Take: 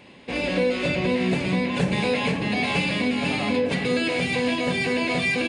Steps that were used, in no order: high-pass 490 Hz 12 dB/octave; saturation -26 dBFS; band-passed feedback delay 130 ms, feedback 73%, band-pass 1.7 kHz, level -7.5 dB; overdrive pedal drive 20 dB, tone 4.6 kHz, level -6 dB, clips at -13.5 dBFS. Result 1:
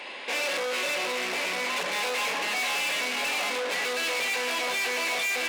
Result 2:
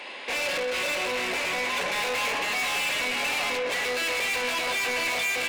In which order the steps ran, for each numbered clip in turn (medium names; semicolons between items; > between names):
overdrive pedal > band-passed feedback delay > saturation > high-pass; overdrive pedal > high-pass > saturation > band-passed feedback delay